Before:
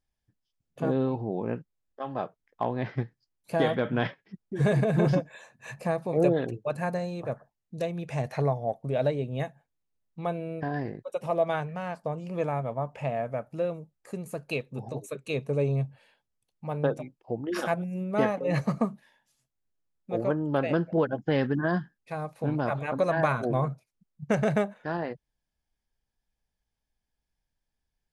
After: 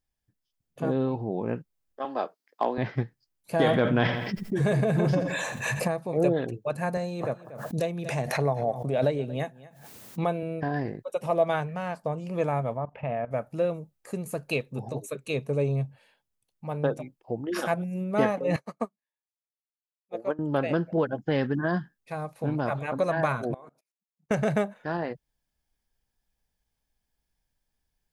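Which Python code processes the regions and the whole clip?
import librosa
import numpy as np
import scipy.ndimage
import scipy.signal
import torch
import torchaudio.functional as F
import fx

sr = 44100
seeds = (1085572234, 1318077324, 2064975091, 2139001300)

y = fx.chain(x, sr, fx.highpass(hz=250.0, slope=24),
    fx.peak_eq(hz=4700.0, db=8.5, octaves=0.43), at=(2.05, 2.78))
y = fx.chain(y, sr, fx.echo_feedback(ms=83, feedback_pct=31, wet_db=-18.5),
    fx.env_flatten(amount_pct=70), at=(3.59, 5.88))
y = fx.chain(y, sr, fx.highpass(hz=130.0, slope=12),
    fx.echo_single(ms=235, db=-20.0),
    fx.pre_swell(db_per_s=57.0), at=(6.97, 10.43))
y = fx.chain(y, sr, fx.lowpass(hz=3000.0, slope=24),
    fx.level_steps(step_db=16), at=(12.77, 13.31))
y = fx.chain(y, sr, fx.highpass(hz=300.0, slope=12),
    fx.upward_expand(threshold_db=-48.0, expansion=2.5), at=(18.56, 20.39))
y = fx.chain(y, sr, fx.highpass(hz=260.0, slope=24),
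    fx.level_steps(step_db=23), at=(23.54, 24.31))
y = fx.high_shelf(y, sr, hz=10000.0, db=6.5)
y = fx.rider(y, sr, range_db=3, speed_s=2.0)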